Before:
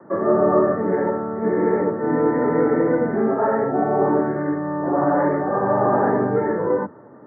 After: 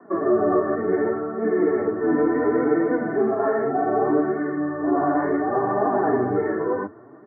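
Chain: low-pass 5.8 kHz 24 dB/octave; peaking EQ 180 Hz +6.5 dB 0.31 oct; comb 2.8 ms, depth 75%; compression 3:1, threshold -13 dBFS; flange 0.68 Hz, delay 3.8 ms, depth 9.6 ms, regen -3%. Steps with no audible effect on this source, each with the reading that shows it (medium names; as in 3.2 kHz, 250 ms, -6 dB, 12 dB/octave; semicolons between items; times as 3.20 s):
low-pass 5.8 kHz: input has nothing above 1.9 kHz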